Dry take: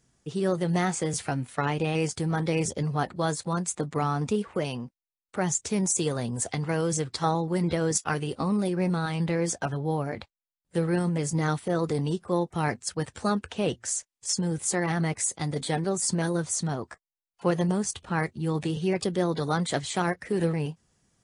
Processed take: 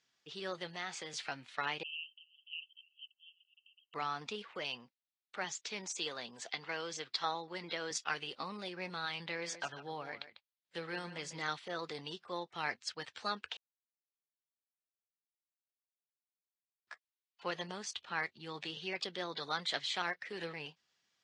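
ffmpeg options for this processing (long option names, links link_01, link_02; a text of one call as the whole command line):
ffmpeg -i in.wav -filter_complex "[0:a]asettb=1/sr,asplit=3[link_01][link_02][link_03];[link_01]atrim=end=0.674[link_04];[link_02]atrim=start=0.67:end=1.17,asetpts=PTS-STARTPTS,afade=type=in:duration=0.004:curve=qsin,afade=type=out:start_time=0.496:duration=0.004:curve=qsin,acompressor=threshold=-26dB:ratio=4:attack=3.2:release=140:knee=1:detection=peak[link_05];[link_03]atrim=start=1.166[link_06];[link_04][link_05]acrossfade=duration=0.004:curve1=hsin:curve2=qsin[link_07];[link_07][link_06]acrossfade=duration=0.004:curve1=qsin:curve2=hsin,asettb=1/sr,asplit=3[link_08][link_09][link_10];[link_08]atrim=end=1.834[link_11];[link_09]atrim=start=1.83:end=3.94,asetpts=PTS-STARTPTS,afade=type=in:duration=0.004:curve=qsin,afade=type=out:start_time=2.106:duration=0.004:curve=qsin,asuperpass=centerf=2900:order=12:qfactor=5.6[link_12];[link_10]atrim=start=3.936[link_13];[link_11][link_12]acrossfade=duration=0.004:curve1=hsin:curve2=qsin[link_14];[link_14][link_13]acrossfade=duration=0.004:curve1=qsin:curve2=hsin,asettb=1/sr,asplit=3[link_15][link_16][link_17];[link_15]atrim=end=5.444[link_18];[link_16]atrim=start=5.44:end=7.91,asetpts=PTS-STARTPTS,afade=type=in:duration=0.004:curve=qsin,afade=type=out:start_time=2.466:duration=0.004:curve=qsin,highpass=170,lowpass=7400[link_19];[link_17]atrim=start=7.906[link_20];[link_18][link_19]acrossfade=duration=0.004:curve1=hsin:curve2=qsin[link_21];[link_21][link_20]acrossfade=duration=0.004:curve1=qsin:curve2=hsin,asettb=1/sr,asplit=3[link_22][link_23][link_24];[link_22]atrim=end=9.274[link_25];[link_23]atrim=start=9.27:end=11.42,asetpts=PTS-STARTPTS,afade=type=in:duration=0.004:curve=qsin,afade=type=out:start_time=2.146:duration=0.004:curve=qsin,aecho=1:1:147:0.237,atrim=end_sample=94815[link_26];[link_24]atrim=start=11.416[link_27];[link_25][link_26]acrossfade=duration=0.004:curve1=hsin:curve2=qsin[link_28];[link_28][link_27]acrossfade=duration=0.004:curve1=qsin:curve2=hsin,asplit=3[link_29][link_30][link_31];[link_29]atrim=end=13.57,asetpts=PTS-STARTPTS,afade=type=out:start_time=13.566:duration=0.004:curve=hsin[link_32];[link_30]atrim=start=13.57:end=16.87,asetpts=PTS-STARTPTS,volume=0[link_33];[link_31]atrim=start=16.87,asetpts=PTS-STARTPTS,afade=type=in:duration=0.004:curve=hsin[link_34];[link_32][link_33][link_34]concat=n=3:v=0:a=1,lowpass=frequency=4000:width=0.5412,lowpass=frequency=4000:width=1.3066,aderivative,volume=8dB" out.wav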